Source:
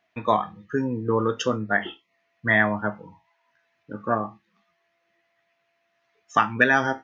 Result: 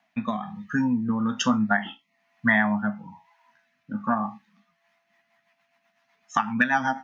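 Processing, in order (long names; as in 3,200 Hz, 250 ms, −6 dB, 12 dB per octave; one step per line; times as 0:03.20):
drawn EQ curve 110 Hz 0 dB, 240 Hz +14 dB, 390 Hz −18 dB, 820 Hz +14 dB, 1,200 Hz +8 dB, 3,400 Hz +6 dB, 8,500 Hz +9 dB
downward compressor 6 to 1, threshold −15 dBFS, peak gain reduction 11 dB
rotating-speaker cabinet horn 1.1 Hz, later 8 Hz, at 0:04.61
level −1.5 dB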